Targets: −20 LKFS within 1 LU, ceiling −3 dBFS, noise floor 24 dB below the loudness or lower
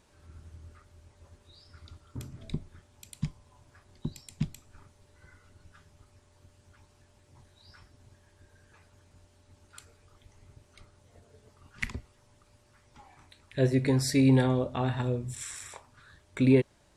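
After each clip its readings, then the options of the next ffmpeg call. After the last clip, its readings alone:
integrated loudness −29.0 LKFS; sample peak −10.5 dBFS; target loudness −20.0 LKFS
→ -af "volume=9dB,alimiter=limit=-3dB:level=0:latency=1"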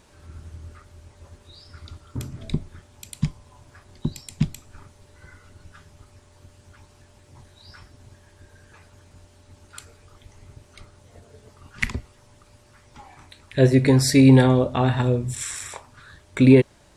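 integrated loudness −20.0 LKFS; sample peak −3.0 dBFS; background noise floor −55 dBFS

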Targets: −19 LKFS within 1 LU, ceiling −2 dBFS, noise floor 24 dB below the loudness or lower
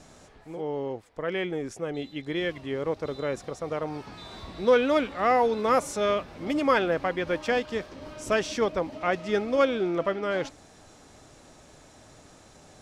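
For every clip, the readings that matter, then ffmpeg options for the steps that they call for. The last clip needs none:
integrated loudness −27.5 LKFS; sample peak −11.0 dBFS; target loudness −19.0 LKFS
→ -af "volume=8.5dB"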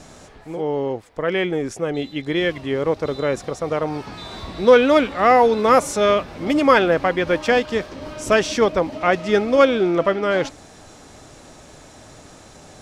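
integrated loudness −19.0 LKFS; sample peak −2.5 dBFS; background noise floor −45 dBFS

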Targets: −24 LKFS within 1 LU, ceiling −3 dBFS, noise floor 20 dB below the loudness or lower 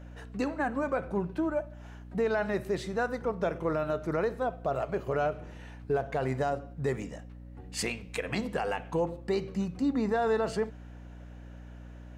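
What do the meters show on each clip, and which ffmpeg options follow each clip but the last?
mains hum 60 Hz; hum harmonics up to 300 Hz; level of the hum −44 dBFS; integrated loudness −31.5 LKFS; sample peak −19.0 dBFS; target loudness −24.0 LKFS
→ -af "bandreject=frequency=60:width_type=h:width=4,bandreject=frequency=120:width_type=h:width=4,bandreject=frequency=180:width_type=h:width=4,bandreject=frequency=240:width_type=h:width=4,bandreject=frequency=300:width_type=h:width=4"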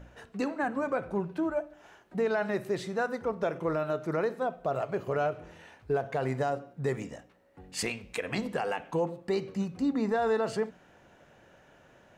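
mains hum none found; integrated loudness −32.0 LKFS; sample peak −19.0 dBFS; target loudness −24.0 LKFS
→ -af "volume=8dB"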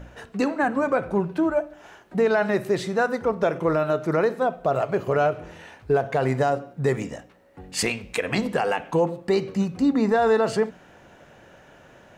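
integrated loudness −24.0 LKFS; sample peak −11.0 dBFS; background noise floor −52 dBFS

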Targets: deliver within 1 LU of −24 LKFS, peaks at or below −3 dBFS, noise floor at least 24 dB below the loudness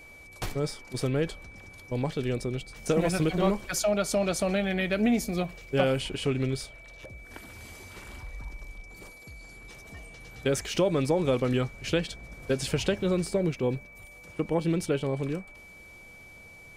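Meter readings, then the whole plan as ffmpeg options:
interfering tone 2,300 Hz; level of the tone −48 dBFS; integrated loudness −28.5 LKFS; sample peak −12.0 dBFS; target loudness −24.0 LKFS
→ -af "bandreject=frequency=2300:width=30"
-af "volume=4.5dB"

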